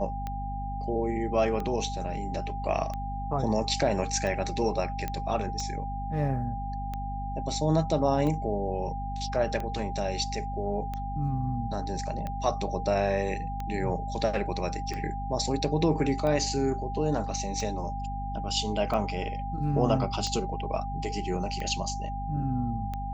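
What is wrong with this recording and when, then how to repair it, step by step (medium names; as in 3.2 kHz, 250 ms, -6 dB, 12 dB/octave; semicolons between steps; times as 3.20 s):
hum 50 Hz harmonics 5 -35 dBFS
tick 45 rpm -21 dBFS
whine 800 Hz -35 dBFS
5.08 s: pop -17 dBFS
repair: de-click; band-stop 800 Hz, Q 30; de-hum 50 Hz, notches 5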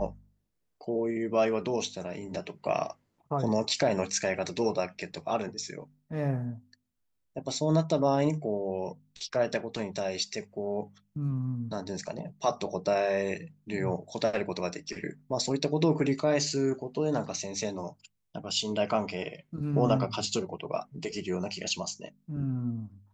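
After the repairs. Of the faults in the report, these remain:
nothing left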